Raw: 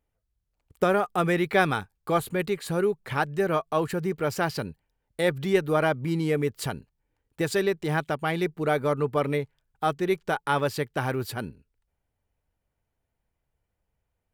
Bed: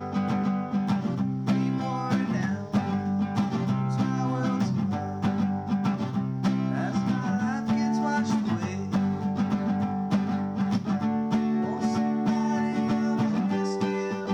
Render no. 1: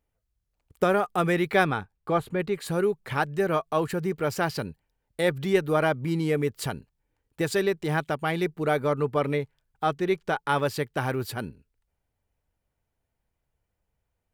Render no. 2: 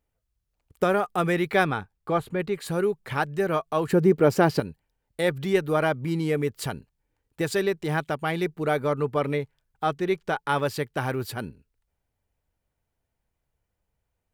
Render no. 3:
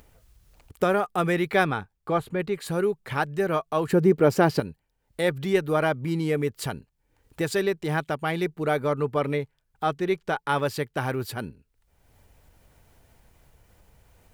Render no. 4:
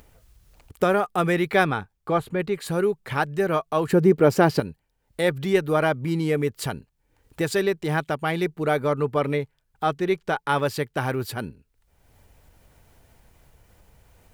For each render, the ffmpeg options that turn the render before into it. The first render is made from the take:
-filter_complex "[0:a]asplit=3[a][b][c];[a]afade=t=out:st=1.63:d=0.02[d];[b]lowpass=f=2.2k:p=1,afade=t=in:st=1.63:d=0.02,afade=t=out:st=2.53:d=0.02[e];[c]afade=t=in:st=2.53:d=0.02[f];[d][e][f]amix=inputs=3:normalize=0,asettb=1/sr,asplit=3[g][h][i];[g]atrim=end=8.784[j];[h]atrim=start=8.78:end=10.49,asetpts=PTS-STARTPTS,afade=t=in:d=0.004:c=qsin,afade=t=out:st=1.706:d=0.004:c=qsin,acrossover=split=7000[k][l];[l]acompressor=threshold=-56dB:ratio=4:attack=1:release=60[m];[k][m]amix=inputs=2:normalize=0[n];[i]atrim=start=10.486[o];[j][n]acrossfade=d=0.004:c1=hsin:c2=qsin[p];[p][o]acrossfade=d=0.004:c1=qsin:c2=hsin"
-filter_complex "[0:a]asettb=1/sr,asplit=3[a][b][c];[a]atrim=end=3.884[d];[b]atrim=start=3.88:end=4.6,asetpts=PTS-STARTPTS,afade=t=in:d=0.004:c=qsin,afade=t=out:st=0.716:d=0.004:c=qsin,equalizer=f=310:w=0.43:g=10.5[e];[c]atrim=start=4.596[f];[d][e]acrossfade=d=0.004:c1=hsin:c2=qsin[g];[g][f]acrossfade=d=0.004:c1=qsin:c2=hsin"
-af "acompressor=mode=upward:threshold=-38dB:ratio=2.5"
-af "volume=2dB"

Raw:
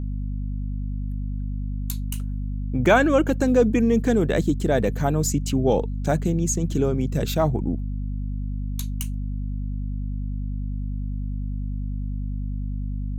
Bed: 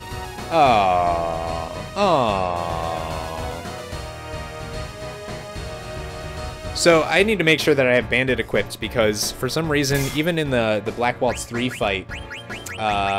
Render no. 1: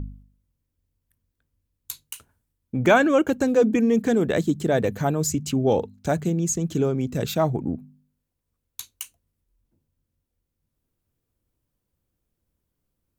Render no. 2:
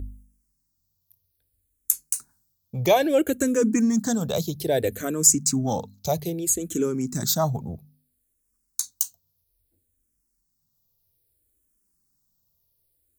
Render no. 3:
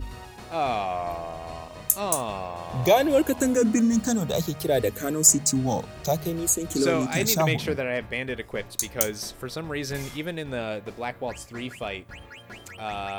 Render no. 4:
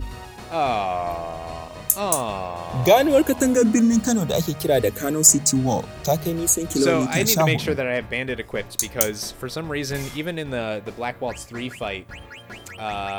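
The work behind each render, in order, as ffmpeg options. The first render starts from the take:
-af "bandreject=f=50:t=h:w=4,bandreject=f=100:t=h:w=4,bandreject=f=150:t=h:w=4,bandreject=f=200:t=h:w=4,bandreject=f=250:t=h:w=4"
-filter_complex "[0:a]aexciter=amount=5.3:drive=2.8:freq=4.1k,asplit=2[a][b];[b]afreqshift=-0.61[c];[a][c]amix=inputs=2:normalize=1"
-filter_complex "[1:a]volume=-11dB[a];[0:a][a]amix=inputs=2:normalize=0"
-af "volume=4dB,alimiter=limit=-1dB:level=0:latency=1"

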